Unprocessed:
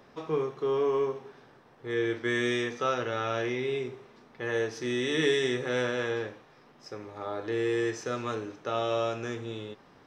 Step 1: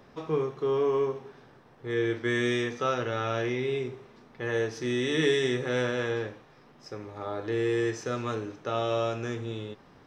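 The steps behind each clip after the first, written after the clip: low shelf 170 Hz +7 dB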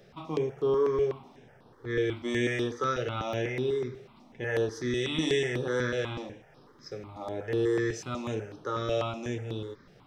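step phaser 8.1 Hz 270–7100 Hz; gain +1.5 dB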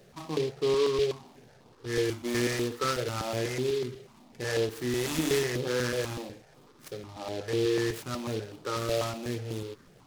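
noise-modulated delay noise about 3300 Hz, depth 0.066 ms

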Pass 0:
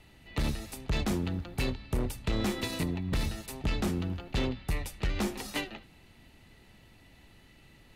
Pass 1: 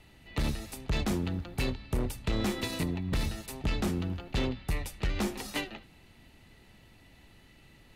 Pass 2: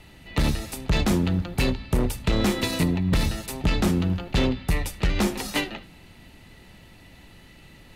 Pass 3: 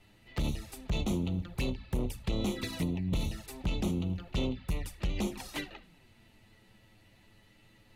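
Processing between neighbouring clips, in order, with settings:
nothing audible
reverb RT60 0.35 s, pre-delay 3 ms, DRR 15 dB; gain +8 dB
envelope flanger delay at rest 11.1 ms, full sweep at -19 dBFS; gain -9 dB

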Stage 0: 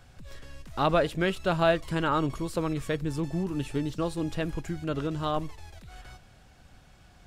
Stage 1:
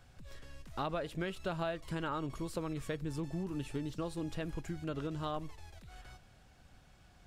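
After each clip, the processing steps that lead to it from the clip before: compressor 6:1, threshold -27 dBFS, peak gain reduction 9.5 dB; gain -6 dB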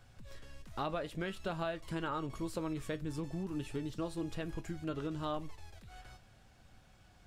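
flange 0.46 Hz, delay 8.8 ms, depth 1.3 ms, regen +72%; gain +4 dB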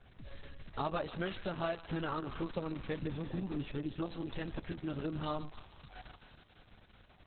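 thinning echo 0.152 s, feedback 80%, high-pass 1100 Hz, level -9.5 dB; gain +2.5 dB; Opus 6 kbps 48000 Hz

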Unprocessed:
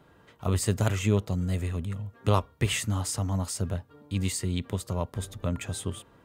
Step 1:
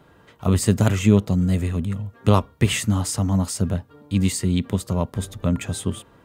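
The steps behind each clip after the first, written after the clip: dynamic EQ 210 Hz, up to +7 dB, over -40 dBFS, Q 1.2; gain +5 dB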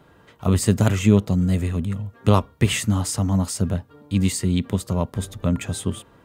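nothing audible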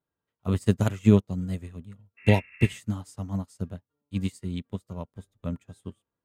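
wow and flutter 26 cents; spectral repair 2.2–2.71, 1000–2800 Hz after; upward expander 2.5:1, over -35 dBFS

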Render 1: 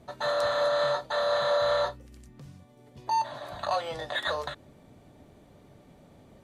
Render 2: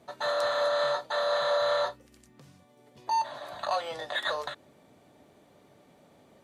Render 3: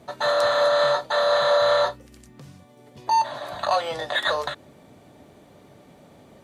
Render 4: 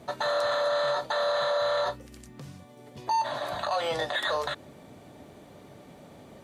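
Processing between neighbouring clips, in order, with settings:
HPF 360 Hz 6 dB/oct
low shelf 170 Hz +6.5 dB; gain +7 dB
limiter -20.5 dBFS, peak gain reduction 10.5 dB; gain +1 dB

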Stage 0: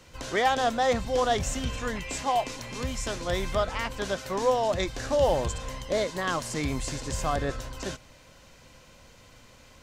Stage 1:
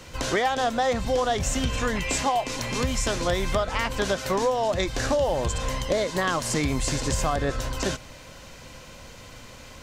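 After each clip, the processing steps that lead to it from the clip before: compressor 6:1, threshold -30 dBFS, peak gain reduction 11.5 dB; gain +9 dB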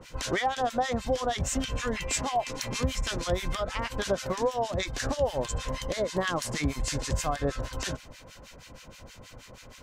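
harmonic tremolo 6.3 Hz, depth 100%, crossover 1200 Hz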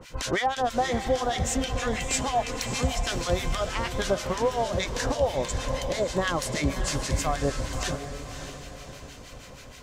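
diffused feedback echo 0.593 s, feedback 44%, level -9 dB; gain +2 dB

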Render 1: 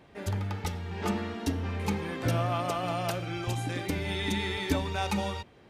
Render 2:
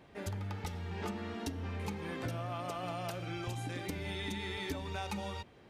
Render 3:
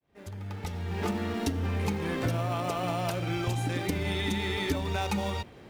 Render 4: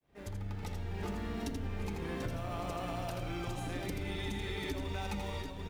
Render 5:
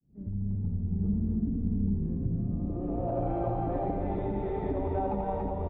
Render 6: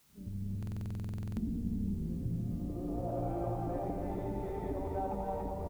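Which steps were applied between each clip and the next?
compressor, threshold -33 dBFS, peak gain reduction 11 dB; gain -2.5 dB
opening faded in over 1.17 s; in parallel at -10.5 dB: sample-and-hold 27×; on the sum: gain +7.5 dB
octaver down 2 oct, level -3 dB; on a send: tapped delay 82/740 ms -6/-9 dB; on the sum: compressor 3:1, threshold -38 dBFS, peak gain reduction 12.5 dB
median filter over 5 samples; low-pass sweep 200 Hz -> 710 Hz, 2.54–3.22; echo 0.284 s -4 dB; gain +5 dB
doubler 17 ms -12 dB; added noise white -62 dBFS; stuck buffer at 0.58, samples 2048, times 16; gain -6 dB

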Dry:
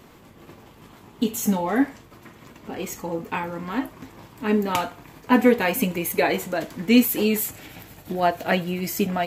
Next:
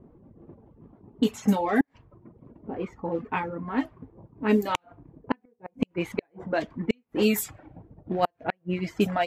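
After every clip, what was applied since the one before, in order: flipped gate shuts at -10 dBFS, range -36 dB; low-pass opened by the level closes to 400 Hz, open at -18 dBFS; reverb removal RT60 0.75 s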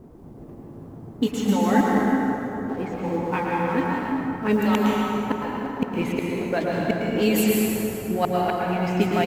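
G.711 law mismatch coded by mu; echo 0.11 s -9.5 dB; plate-style reverb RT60 3.4 s, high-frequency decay 0.6×, pre-delay 0.11 s, DRR -3 dB

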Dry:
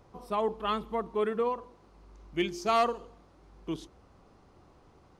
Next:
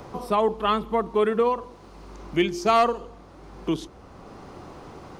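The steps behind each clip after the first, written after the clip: three-band squash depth 40%; gain +8 dB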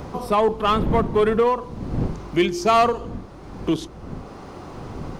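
wind noise 210 Hz -35 dBFS; in parallel at -3.5 dB: hard clip -20.5 dBFS, distortion -9 dB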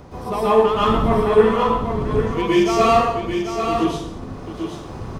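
echo 0.789 s -7 dB; plate-style reverb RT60 0.77 s, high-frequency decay 0.9×, pre-delay 0.105 s, DRR -9 dB; gain -7.5 dB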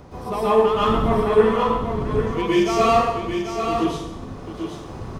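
thinning echo 91 ms, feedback 65%, level -15 dB; gain -2 dB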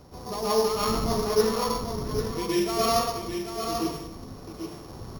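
sample sorter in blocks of 8 samples; gain -7 dB

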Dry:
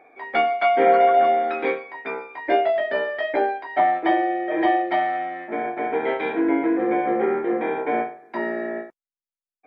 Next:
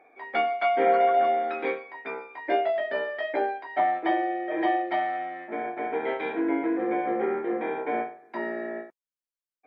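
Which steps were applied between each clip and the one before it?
low shelf 77 Hz -10.5 dB; gain -5 dB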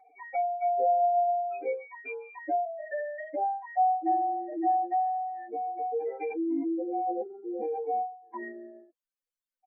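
spectral contrast raised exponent 3.4; comb 3.9 ms, depth 79%; gain -4.5 dB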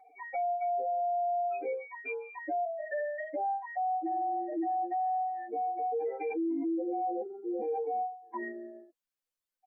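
limiter -28 dBFS, peak gain reduction 10.5 dB; gain +1 dB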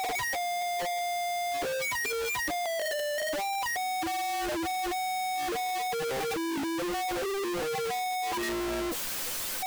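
infinite clipping; gain +2.5 dB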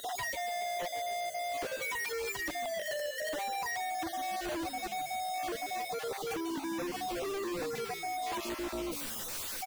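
random spectral dropouts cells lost 21%; frequency-shifting echo 0.143 s, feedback 50%, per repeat -61 Hz, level -12.5 dB; gain -4.5 dB

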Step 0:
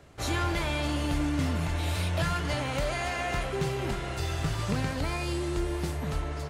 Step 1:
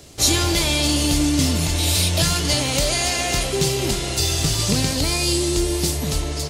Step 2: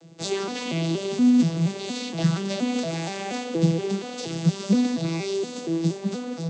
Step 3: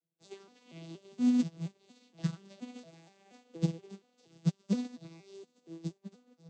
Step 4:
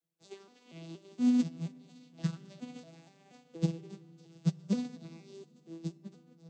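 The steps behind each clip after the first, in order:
EQ curve 150 Hz 0 dB, 320 Hz +3 dB, 1500 Hz -6 dB, 4900 Hz +14 dB; gain +7.5 dB
arpeggiated vocoder minor triad, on E3, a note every 0.236 s; gain -2 dB
upward expander 2.5:1, over -39 dBFS; gain -7.5 dB
FDN reverb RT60 2.8 s, low-frequency decay 1.25×, high-frequency decay 0.3×, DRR 18.5 dB

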